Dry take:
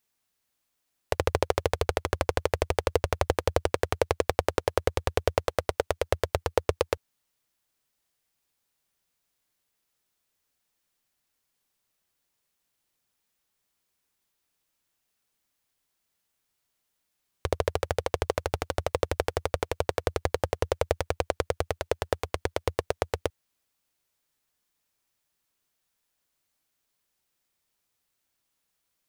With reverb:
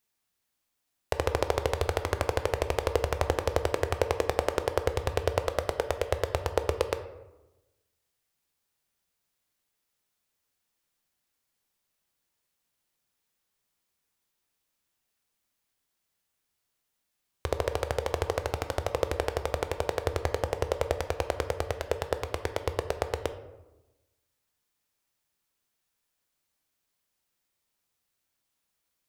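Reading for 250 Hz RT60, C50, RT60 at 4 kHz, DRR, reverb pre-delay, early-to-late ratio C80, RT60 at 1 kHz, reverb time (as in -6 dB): 1.3 s, 11.5 dB, 0.55 s, 8.5 dB, 13 ms, 13.5 dB, 1.0 s, 1.0 s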